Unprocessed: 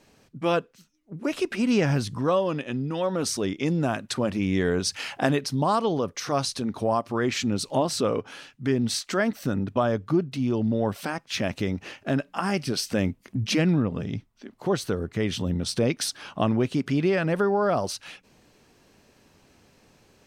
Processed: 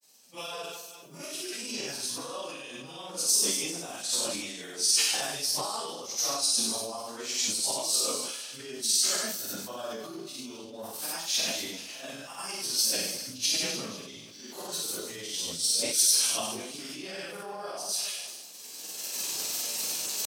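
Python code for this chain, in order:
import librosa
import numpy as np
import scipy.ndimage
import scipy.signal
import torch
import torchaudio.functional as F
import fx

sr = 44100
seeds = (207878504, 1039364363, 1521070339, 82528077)

y = fx.phase_scramble(x, sr, seeds[0], window_ms=200)
y = fx.recorder_agc(y, sr, target_db=-16.0, rise_db_per_s=21.0, max_gain_db=30)
y = scipy.signal.sosfilt(scipy.signal.butter(2, 120.0, 'highpass', fs=sr, output='sos'), y)
y = np.diff(y, prepend=0.0)
y = fx.doubler(y, sr, ms=36.0, db=-2.5)
y = fx.echo_feedback(y, sr, ms=215, feedback_pct=48, wet_db=-14.5)
y = fx.granulator(y, sr, seeds[1], grain_ms=100.0, per_s=20.0, spray_ms=38.0, spread_st=0)
y = fx.peak_eq(y, sr, hz=1800.0, db=-10.0, octaves=1.5)
y = fx.sustainer(y, sr, db_per_s=33.0)
y = y * librosa.db_to_amplitude(7.0)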